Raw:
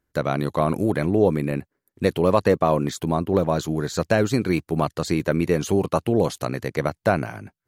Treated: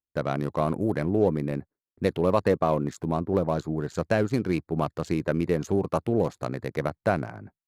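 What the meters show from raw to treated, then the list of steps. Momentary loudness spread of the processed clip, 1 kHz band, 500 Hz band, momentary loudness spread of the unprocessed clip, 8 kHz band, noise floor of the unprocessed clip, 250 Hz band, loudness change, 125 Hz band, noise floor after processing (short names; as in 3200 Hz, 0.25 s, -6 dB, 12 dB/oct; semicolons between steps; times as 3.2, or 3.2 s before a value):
7 LU, -4.5 dB, -4.0 dB, 6 LU, -11.5 dB, -83 dBFS, -4.0 dB, -4.5 dB, -4.0 dB, under -85 dBFS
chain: Wiener smoothing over 15 samples; downsampling 32000 Hz; gate with hold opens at -38 dBFS; gain -4 dB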